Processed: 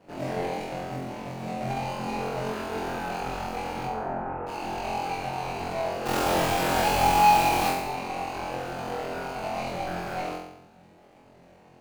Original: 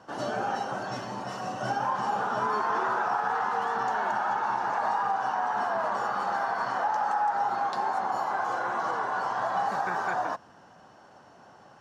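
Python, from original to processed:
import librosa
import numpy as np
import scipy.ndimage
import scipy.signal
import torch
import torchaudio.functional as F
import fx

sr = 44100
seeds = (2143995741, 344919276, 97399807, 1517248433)

p1 = scipy.ndimage.median_filter(x, 41, mode='constant')
p2 = fx.cheby2_lowpass(p1, sr, hz=5300.0, order=4, stop_db=60, at=(3.85, 4.46), fade=0.02)
p3 = fx.quant_companded(p2, sr, bits=2, at=(6.05, 7.7), fade=0.02)
y = p3 + fx.room_flutter(p3, sr, wall_m=3.9, rt60_s=0.77, dry=0)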